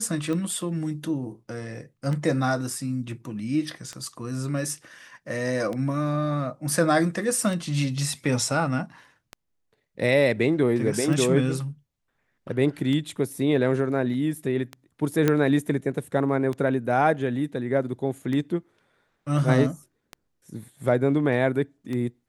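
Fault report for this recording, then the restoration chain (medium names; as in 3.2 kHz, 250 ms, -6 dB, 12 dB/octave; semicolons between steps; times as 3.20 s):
tick 33 1/3 rpm -19 dBFS
15.28 s: pop -8 dBFS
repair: de-click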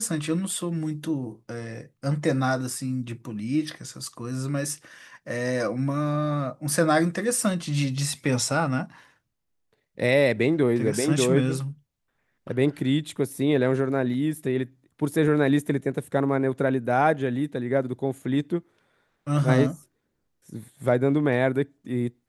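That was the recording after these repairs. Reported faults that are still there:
nothing left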